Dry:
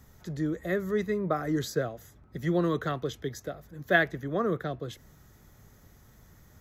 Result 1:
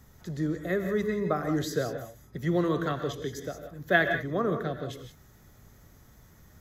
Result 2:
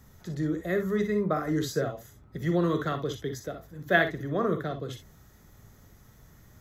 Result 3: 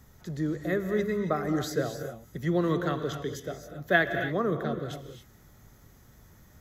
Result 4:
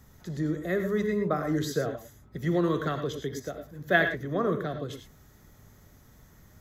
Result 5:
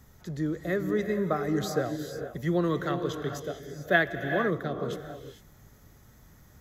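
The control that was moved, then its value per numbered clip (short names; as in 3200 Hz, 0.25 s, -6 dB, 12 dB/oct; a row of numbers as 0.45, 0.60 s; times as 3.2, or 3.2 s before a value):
non-linear reverb, gate: 200, 80, 300, 130, 480 ms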